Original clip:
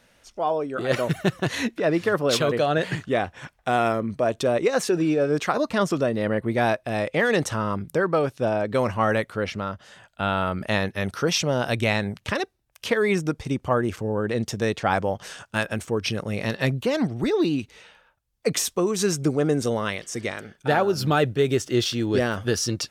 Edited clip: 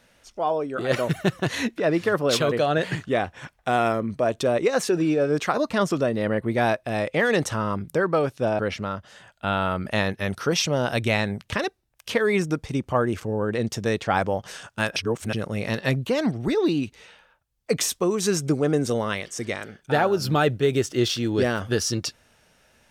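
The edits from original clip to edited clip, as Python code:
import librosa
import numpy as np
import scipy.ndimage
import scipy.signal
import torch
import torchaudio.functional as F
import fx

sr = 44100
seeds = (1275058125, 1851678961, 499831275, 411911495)

y = fx.edit(x, sr, fx.cut(start_s=8.59, length_s=0.76),
    fx.reverse_span(start_s=15.72, length_s=0.37), tone=tone)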